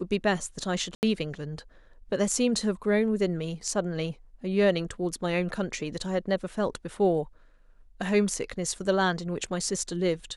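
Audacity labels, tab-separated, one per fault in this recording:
0.950000	1.030000	drop-out 79 ms

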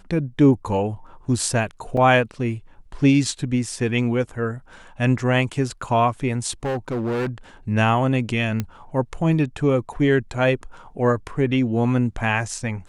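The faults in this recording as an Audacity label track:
1.970000	1.970000	drop-out 3.4 ms
6.640000	7.290000	clipping −21 dBFS
8.600000	8.600000	click −11 dBFS

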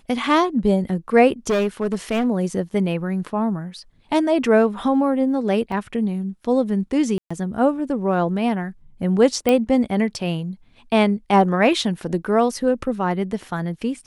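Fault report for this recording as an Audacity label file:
1.490000	2.270000	clipping −16 dBFS
5.720000	5.720000	drop-out 3 ms
7.180000	7.300000	drop-out 125 ms
9.490000	9.490000	click −6 dBFS

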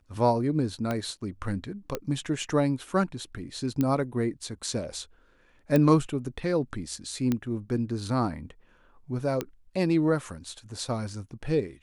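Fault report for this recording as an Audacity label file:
0.910000	0.910000	click −16 dBFS
1.950000	1.950000	click −15 dBFS
3.810000	3.810000	click −14 dBFS
5.760000	5.760000	click −12 dBFS
7.320000	7.320000	click −14 dBFS
9.410000	9.410000	click −15 dBFS

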